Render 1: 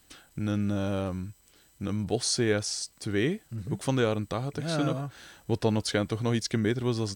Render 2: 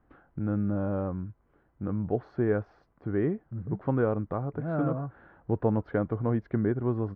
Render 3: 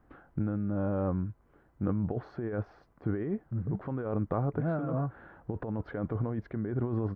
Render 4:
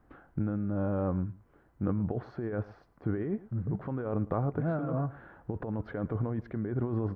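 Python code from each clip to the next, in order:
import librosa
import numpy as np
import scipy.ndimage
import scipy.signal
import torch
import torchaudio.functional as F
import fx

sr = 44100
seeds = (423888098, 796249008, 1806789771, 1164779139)

y1 = scipy.signal.sosfilt(scipy.signal.butter(4, 1400.0, 'lowpass', fs=sr, output='sos'), x)
y2 = fx.over_compress(y1, sr, threshold_db=-31.0, ratio=-1.0)
y3 = y2 + 10.0 ** (-19.5 / 20.0) * np.pad(y2, (int(110 * sr / 1000.0), 0))[:len(y2)]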